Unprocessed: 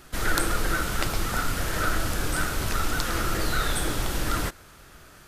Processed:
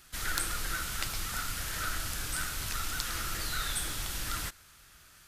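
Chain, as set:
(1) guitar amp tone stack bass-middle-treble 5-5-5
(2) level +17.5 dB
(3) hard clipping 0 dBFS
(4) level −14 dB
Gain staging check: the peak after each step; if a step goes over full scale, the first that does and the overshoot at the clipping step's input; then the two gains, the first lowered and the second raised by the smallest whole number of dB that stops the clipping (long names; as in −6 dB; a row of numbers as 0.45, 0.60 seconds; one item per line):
−10.5, +7.0, 0.0, −14.0 dBFS
step 2, 7.0 dB
step 2 +10.5 dB, step 4 −7 dB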